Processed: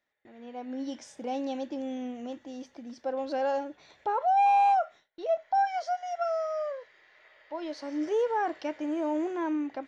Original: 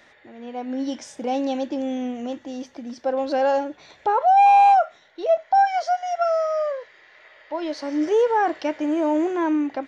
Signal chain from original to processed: gate with hold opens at -42 dBFS; trim -8.5 dB

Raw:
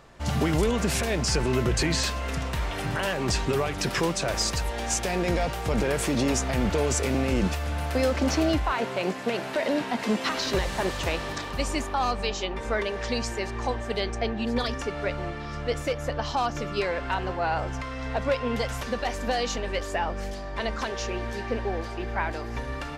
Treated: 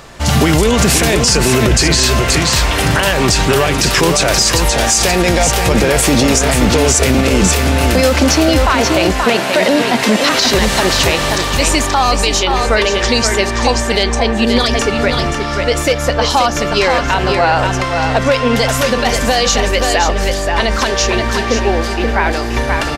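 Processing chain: treble shelf 2.9 kHz +7.5 dB; on a send: delay 528 ms -6.5 dB; on the sum: loudness maximiser +15.5 dB; trim -1 dB

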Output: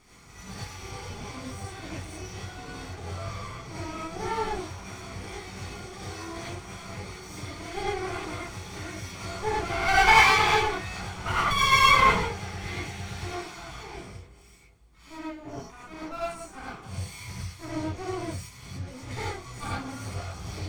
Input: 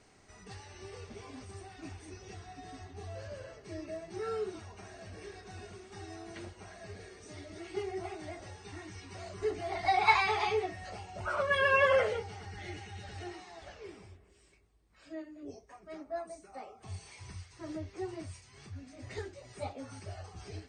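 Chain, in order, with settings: comb filter that takes the minimum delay 0.89 ms; gated-style reverb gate 130 ms rising, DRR -7 dB; trim +3.5 dB

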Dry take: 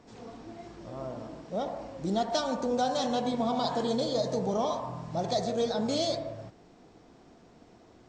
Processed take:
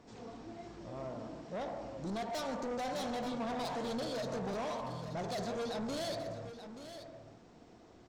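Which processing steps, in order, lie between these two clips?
saturation -32.5 dBFS, distortion -8 dB; on a send: delay 880 ms -11 dB; on the sum: trim -2.5 dB

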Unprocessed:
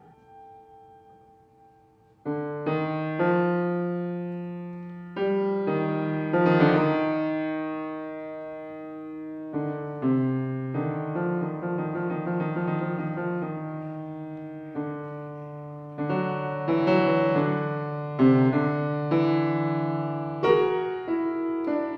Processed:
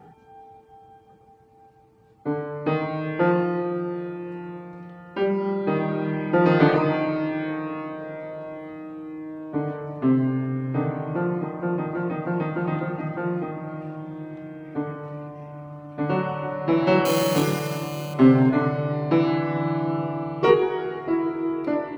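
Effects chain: reverb removal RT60 0.72 s; 17.05–18.14 s: sample-rate reducer 3.6 kHz, jitter 0%; reverberation RT60 5.3 s, pre-delay 30 ms, DRR 12 dB; trim +4 dB

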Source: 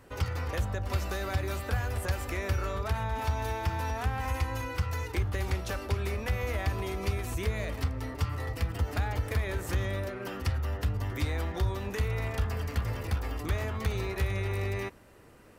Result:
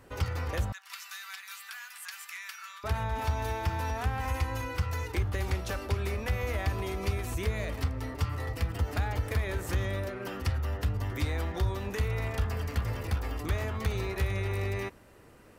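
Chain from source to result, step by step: 0.72–2.84 s: Bessel high-pass 1.9 kHz, order 8

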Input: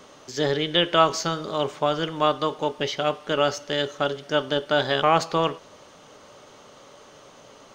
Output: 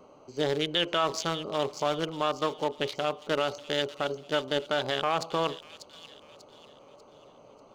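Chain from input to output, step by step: local Wiener filter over 25 samples; bass shelf 380 Hz -6 dB; peak limiter -15.5 dBFS, peak gain reduction 10 dB; treble shelf 4.1 kHz +5.5 dB; feedback echo behind a high-pass 592 ms, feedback 40%, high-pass 3.4 kHz, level -8 dB

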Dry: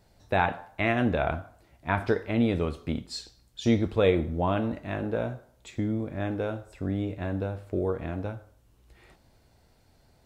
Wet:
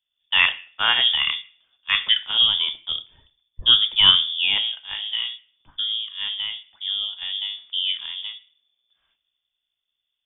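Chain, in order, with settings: frequency inversion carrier 3.5 kHz; three bands expanded up and down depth 70%; trim +3.5 dB

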